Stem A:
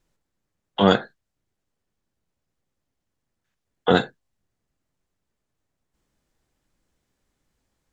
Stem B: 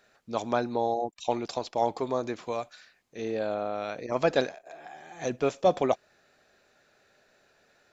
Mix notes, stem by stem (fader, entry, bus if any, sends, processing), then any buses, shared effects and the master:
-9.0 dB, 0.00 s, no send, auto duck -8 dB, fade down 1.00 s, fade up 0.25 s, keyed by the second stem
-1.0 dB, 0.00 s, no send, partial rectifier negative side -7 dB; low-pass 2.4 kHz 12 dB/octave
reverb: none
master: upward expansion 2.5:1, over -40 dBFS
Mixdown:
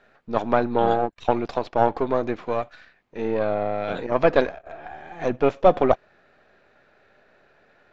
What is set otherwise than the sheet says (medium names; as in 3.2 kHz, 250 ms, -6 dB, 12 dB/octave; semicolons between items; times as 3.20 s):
stem B -1.0 dB -> +9.5 dB; master: missing upward expansion 2.5:1, over -40 dBFS